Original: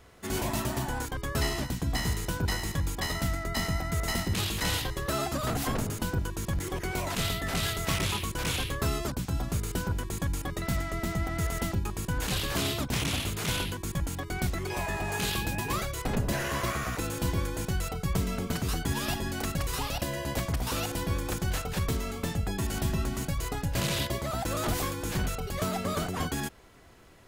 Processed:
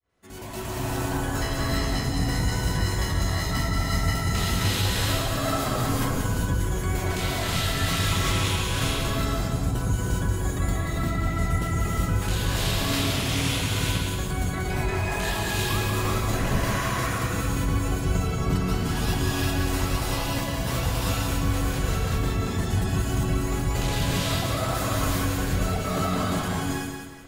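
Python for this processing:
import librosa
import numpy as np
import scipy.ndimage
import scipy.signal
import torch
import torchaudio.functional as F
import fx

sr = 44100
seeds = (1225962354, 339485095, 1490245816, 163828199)

y = fx.fade_in_head(x, sr, length_s=0.84)
y = fx.spec_gate(y, sr, threshold_db=-30, keep='strong')
y = fx.echo_feedback(y, sr, ms=184, feedback_pct=38, wet_db=-5.5)
y = fx.rev_gated(y, sr, seeds[0], gate_ms=420, shape='rising', drr_db=-4.5)
y = y * 10.0 ** (-2.0 / 20.0)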